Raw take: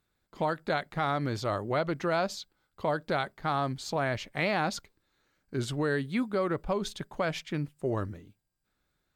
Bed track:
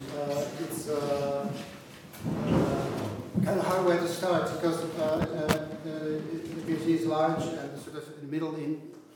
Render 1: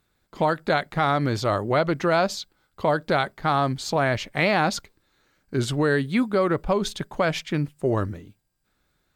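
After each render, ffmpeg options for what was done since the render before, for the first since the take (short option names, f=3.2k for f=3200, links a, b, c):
-af "volume=7.5dB"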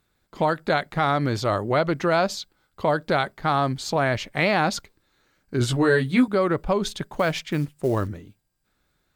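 -filter_complex "[0:a]asettb=1/sr,asplit=3[a][b][c];[a]atrim=end=5.594[d];[b]atrim=start=5.59:end=6.28,asetpts=PTS-STARTPTS,afade=t=in:d=0.004:c=qsin,afade=t=out:st=0.686:d=0.004:c=qsin,asplit=2[e][f];[f]adelay=16,volume=-2dB[g];[e][g]amix=inputs=2:normalize=0,atrim=end_sample=30429[h];[c]atrim=start=6.276[i];[d][h]acrossfade=d=0.004:c1=hsin:c2=qsin[j];[j][i]acrossfade=d=0.004:c1=qsin:c2=hsin,asettb=1/sr,asplit=3[k][l][m];[k]atrim=end=7.064[n];[l]atrim=start=7.06:end=8.08,asetpts=PTS-STARTPTS,afade=t=in:d=0.004:c=qsin,afade=t=out:st=1.016:d=0.004:c=qsin,acrusher=bits=7:mode=log:mix=0:aa=0.000001[o];[m]atrim=start=8.076[p];[n][o]acrossfade=d=0.004:c1=hsin:c2=qsin[q];[q][p]acrossfade=d=0.004:c1=qsin:c2=hsin"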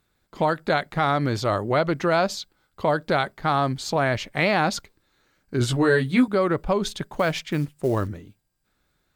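-af anull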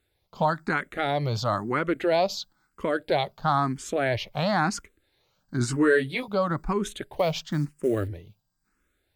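-filter_complex "[0:a]asplit=2[a][b];[b]afreqshift=1[c];[a][c]amix=inputs=2:normalize=1"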